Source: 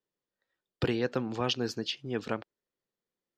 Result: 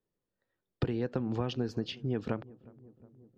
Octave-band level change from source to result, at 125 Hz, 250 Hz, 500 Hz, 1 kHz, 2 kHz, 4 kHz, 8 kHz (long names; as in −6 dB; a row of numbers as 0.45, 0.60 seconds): +3.0 dB, 0.0 dB, −3.0 dB, −5.0 dB, −8.5 dB, −9.0 dB, below −10 dB